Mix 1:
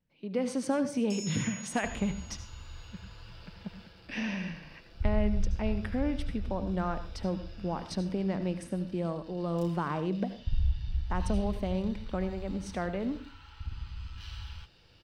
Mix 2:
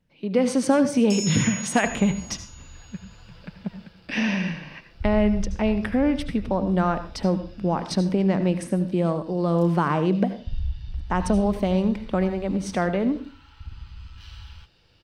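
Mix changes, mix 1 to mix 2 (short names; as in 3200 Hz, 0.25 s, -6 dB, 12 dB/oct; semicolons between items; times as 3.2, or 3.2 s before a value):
speech +10.0 dB; first sound +11.0 dB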